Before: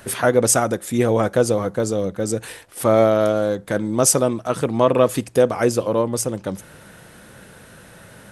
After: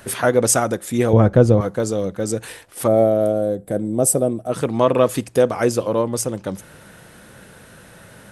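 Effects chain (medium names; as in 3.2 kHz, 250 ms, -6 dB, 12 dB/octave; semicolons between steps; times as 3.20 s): 1.13–1.61 s: RIAA curve playback; 2.87–4.52 s: time-frequency box 800–7500 Hz -13 dB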